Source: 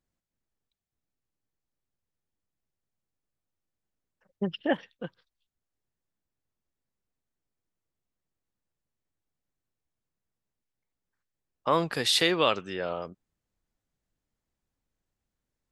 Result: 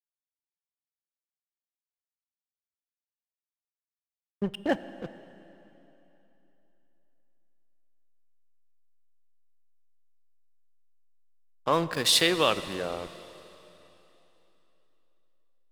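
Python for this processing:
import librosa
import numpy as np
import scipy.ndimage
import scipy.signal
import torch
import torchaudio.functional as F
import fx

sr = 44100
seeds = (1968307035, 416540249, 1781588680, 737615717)

y = fx.high_shelf(x, sr, hz=7100.0, db=11.0)
y = fx.backlash(y, sr, play_db=-31.0)
y = fx.rev_plate(y, sr, seeds[0], rt60_s=3.4, hf_ratio=0.95, predelay_ms=0, drr_db=13.0)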